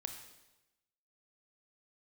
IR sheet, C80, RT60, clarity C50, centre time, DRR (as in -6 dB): 9.0 dB, 1.0 s, 7.0 dB, 23 ms, 5.0 dB